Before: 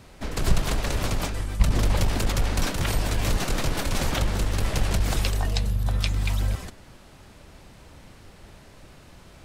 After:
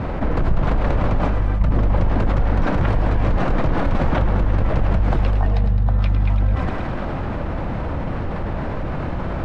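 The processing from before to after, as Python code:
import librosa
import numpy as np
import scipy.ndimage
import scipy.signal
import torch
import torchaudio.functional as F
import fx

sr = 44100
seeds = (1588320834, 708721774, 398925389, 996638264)

y = scipy.signal.sosfilt(scipy.signal.butter(2, 1300.0, 'lowpass', fs=sr, output='sos'), x)
y = fx.notch(y, sr, hz=400.0, q=12.0)
y = fx.echo_thinned(y, sr, ms=106, feedback_pct=66, hz=420.0, wet_db=-10.5)
y = fx.env_flatten(y, sr, amount_pct=70)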